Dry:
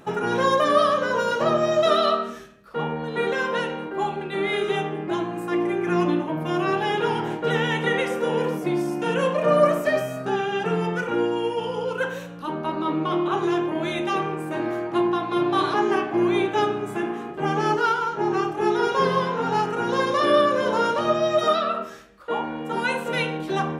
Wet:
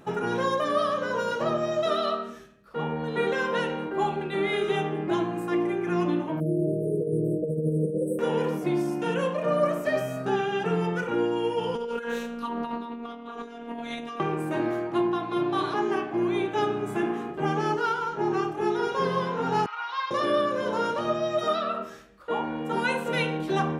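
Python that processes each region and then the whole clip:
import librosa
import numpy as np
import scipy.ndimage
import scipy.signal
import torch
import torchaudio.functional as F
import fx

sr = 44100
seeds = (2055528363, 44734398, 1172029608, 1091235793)

y = fx.chain(x, sr, fx.comb(ms=6.5, depth=0.6),
    fx.over_compress(threshold_db=-22.0, ratio=-0.5),
    fx.brickwall_bandstop(low_hz=680.0, high_hz=7900.0), at=(6.4, 8.19))
y = fx.chain(y, sr, fx.over_compress(threshold_db=-31.0, ratio=-1.0),
    fx.robotise(hz=234.0),
    fx.doppler_dist(depth_ms=0.18), at=(11.75, 14.2))
y = fx.chain(y, sr, fx.ellip_bandpass(low_hz=1000.0, high_hz=4600.0, order=3, stop_db=80),
    fx.notch(hz=1700.0, q=7.0), at=(19.66, 20.11))
y = fx.low_shelf(y, sr, hz=410.0, db=3.0)
y = fx.rider(y, sr, range_db=3, speed_s=0.5)
y = y * librosa.db_to_amplitude(-4.5)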